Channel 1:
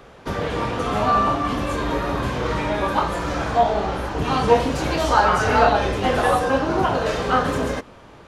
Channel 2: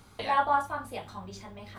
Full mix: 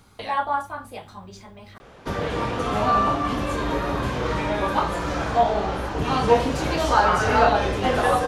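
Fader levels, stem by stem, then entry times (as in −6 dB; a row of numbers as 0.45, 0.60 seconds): −1.5, +1.0 decibels; 1.80, 0.00 seconds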